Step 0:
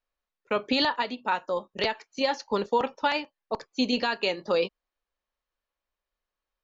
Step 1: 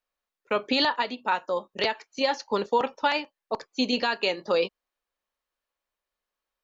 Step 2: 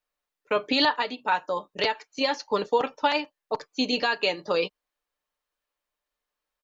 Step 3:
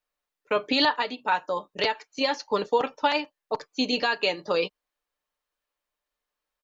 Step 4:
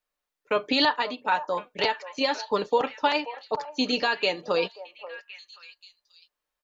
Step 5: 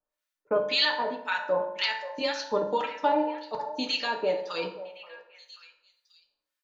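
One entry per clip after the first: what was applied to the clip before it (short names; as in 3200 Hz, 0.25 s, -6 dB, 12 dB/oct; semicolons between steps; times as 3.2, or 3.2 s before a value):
low shelf 130 Hz -9.5 dB; gain +1.5 dB
comb 6.7 ms, depth 42%
nothing audible
delay with a stepping band-pass 0.532 s, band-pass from 770 Hz, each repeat 1.4 oct, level -11 dB
harmonic tremolo 1.9 Hz, depth 100%, crossover 1200 Hz; reverb RT60 0.75 s, pre-delay 3 ms, DRR 2.5 dB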